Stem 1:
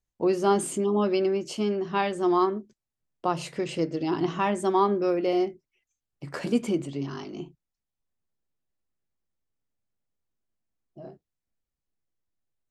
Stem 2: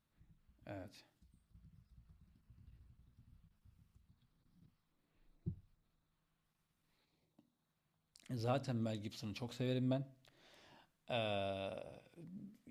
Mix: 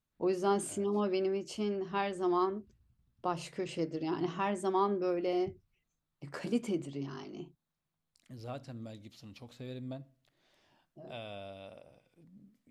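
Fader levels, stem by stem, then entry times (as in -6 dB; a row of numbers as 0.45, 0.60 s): -7.5, -5.0 dB; 0.00, 0.00 s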